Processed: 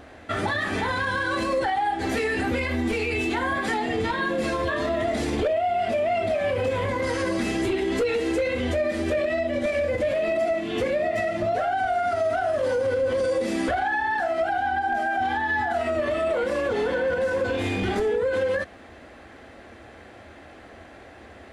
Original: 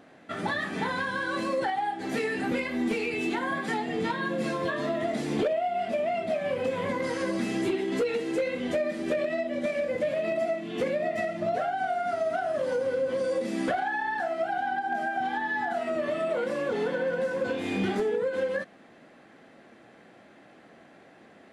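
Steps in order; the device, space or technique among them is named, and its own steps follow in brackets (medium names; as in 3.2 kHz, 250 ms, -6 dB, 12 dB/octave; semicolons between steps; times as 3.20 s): car stereo with a boomy subwoofer (resonant low shelf 110 Hz +12.5 dB, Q 3; peak limiter -26 dBFS, peak gain reduction 8 dB); trim +8.5 dB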